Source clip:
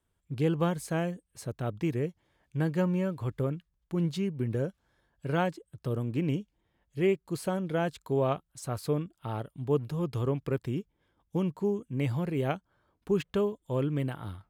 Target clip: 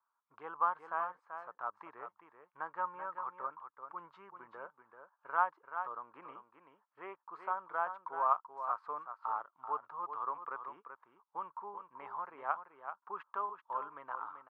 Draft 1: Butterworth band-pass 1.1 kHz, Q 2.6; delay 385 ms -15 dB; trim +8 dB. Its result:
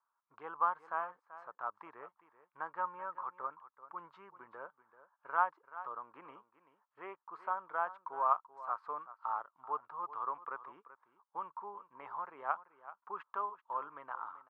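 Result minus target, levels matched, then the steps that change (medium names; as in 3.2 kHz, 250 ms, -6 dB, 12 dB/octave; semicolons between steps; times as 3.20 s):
echo-to-direct -6.5 dB
change: delay 385 ms -8.5 dB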